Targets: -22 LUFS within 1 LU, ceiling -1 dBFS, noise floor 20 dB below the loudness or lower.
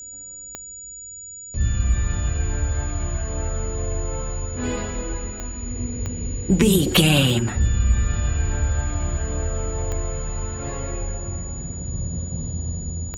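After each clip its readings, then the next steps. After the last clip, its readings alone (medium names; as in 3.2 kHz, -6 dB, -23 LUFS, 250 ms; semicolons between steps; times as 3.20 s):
clicks found 6; steady tone 6.9 kHz; tone level -35 dBFS; loudness -24.0 LUFS; peak level -2.5 dBFS; loudness target -22.0 LUFS
-> de-click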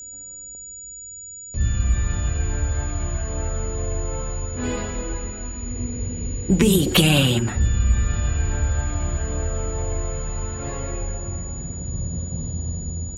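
clicks found 0; steady tone 6.9 kHz; tone level -35 dBFS
-> band-stop 6.9 kHz, Q 30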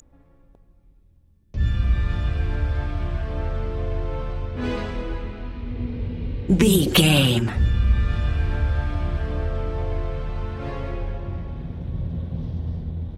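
steady tone not found; loudness -24.5 LUFS; peak level -2.5 dBFS; loudness target -22.0 LUFS
-> trim +2.5 dB; peak limiter -1 dBFS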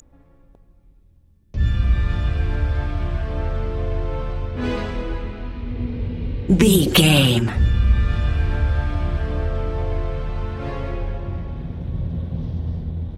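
loudness -22.0 LUFS; peak level -1.0 dBFS; noise floor -53 dBFS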